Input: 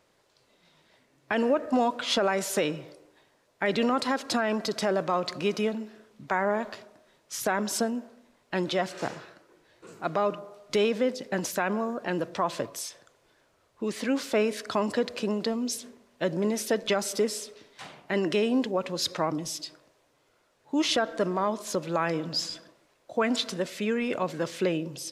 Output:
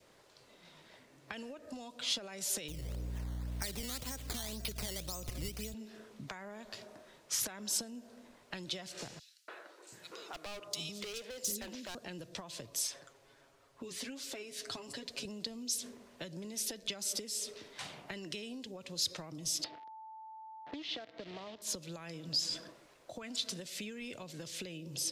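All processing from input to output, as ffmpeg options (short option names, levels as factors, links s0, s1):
-filter_complex "[0:a]asettb=1/sr,asplit=3[s0][s1][s2];[s0]atrim=end=2.684[s3];[s1]atrim=start=2.68:end=5.74,asetpts=PTS-STARTPTS,afade=t=in:d=0.004:c=qsin,afade=t=out:st=3.056:d=0.004:c=qsin,acrusher=samples=12:mix=1:aa=0.000001:lfo=1:lforange=12:lforate=1.9,acompressor=mode=upward:threshold=0.00708:ratio=2.5:attack=3.2:release=140:knee=2.83:detection=peak,aeval=exprs='val(0)+0.01*(sin(2*PI*60*n/s)+sin(2*PI*2*60*n/s)/2+sin(2*PI*3*60*n/s)/3+sin(2*PI*4*60*n/s)/4+sin(2*PI*5*60*n/s)/5)':c=same[s4];[s2]atrim=start=5.736[s5];[s3][s4]acrossfade=d=0.004:c1=hsin:c2=qsin[s6];[s6][s5]acrossfade=d=0.004:c1=qsin:c2=hsin,asettb=1/sr,asplit=3[s7][s8][s9];[s7]atrim=end=9.194[s10];[s8]atrim=start=9.19:end=11.95,asetpts=PTS-STARTPTS,afade=t=in:d=0.004:c=qsin,afade=t=out:st=2.756:d=0.004:c=qsin,lowshelf=f=190:g=-10.5,acrossover=split=280|3400[s11][s12][s13];[s12]adelay=290[s14];[s11]adelay=730[s15];[s15][s14][s13]amix=inputs=3:normalize=0,atrim=end_sample=121716,volume=29.9,asoftclip=hard,volume=0.0335[s16];[s9]atrim=start=11.946[s17];[s10][s16]acrossfade=d=0.004:c1=hsin:c2=qsin[s18];[s18][s17]acrossfade=d=0.004:c1=qsin:c2=hsin,asettb=1/sr,asplit=3[s19][s20][s21];[s19]atrim=end=12.874[s22];[s20]atrim=start=12.87:end=15.25,asetpts=PTS-STARTPTS,afade=t=in:d=0.004:c=qsin,afade=t=out:st=2.376:d=0.004:c=qsin,aecho=1:1:7.3:0.71,atrim=end_sample=104958,flanger=delay=1.6:depth=9.8:regen=67:speed=1.4:shape=triangular[s23];[s21]atrim=start=15.246[s24];[s22][s23]acrossfade=d=0.004:c1=hsin:c2=qsin[s25];[s25][s24]acrossfade=d=0.004:c1=qsin:c2=hsin,asettb=1/sr,asplit=3[s26][s27][s28];[s26]atrim=end=19.644[s29];[s27]atrim=start=19.64:end=21.62,asetpts=PTS-STARTPTS,afade=t=in:d=0.004:c=qsin,afade=t=out:st=1.976:d=0.004:c=qsin,acrusher=bits=6:dc=4:mix=0:aa=0.000001,aeval=exprs='val(0)+0.00251*sin(2*PI*880*n/s)':c=same,highpass=150,equalizer=f=300:t=q:w=4:g=6,equalizer=f=450:t=q:w=4:g=4,equalizer=f=680:t=q:w=4:g=8,equalizer=f=1900:t=q:w=4:g=4,lowpass=f=3800:w=0.5412,lowpass=f=3800:w=1.3066[s30];[s28]atrim=start=21.616[s31];[s29][s30]acrossfade=d=0.004:c1=hsin:c2=qsin[s32];[s32][s31]acrossfade=d=0.004:c1=qsin:c2=hsin,acompressor=threshold=0.02:ratio=3,adynamicequalizer=threshold=0.00251:dfrequency=1200:dqfactor=1.2:tfrequency=1200:tqfactor=1.2:attack=5:release=100:ratio=0.375:range=2.5:mode=cutabove:tftype=bell,acrossover=split=120|3000[s33][s34][s35];[s34]acompressor=threshold=0.00316:ratio=6[s36];[s33][s36][s35]amix=inputs=3:normalize=0,volume=1.5"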